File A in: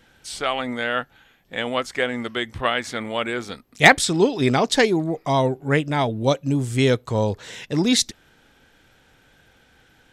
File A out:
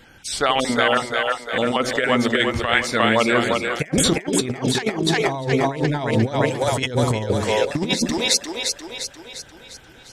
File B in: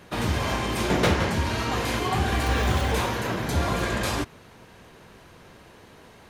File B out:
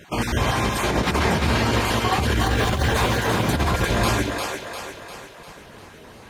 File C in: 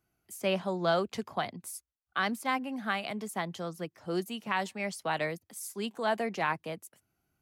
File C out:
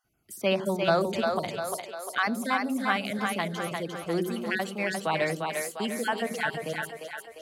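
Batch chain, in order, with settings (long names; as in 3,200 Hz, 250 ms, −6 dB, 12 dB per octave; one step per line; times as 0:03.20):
time-frequency cells dropped at random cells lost 22%
hum removal 180.7 Hz, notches 3
on a send: echo with a time of its own for lows and highs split 390 Hz, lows 81 ms, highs 350 ms, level −4 dB
on the sum: compressor whose output falls as the input rises −23 dBFS, ratio −0.5
level +4 dB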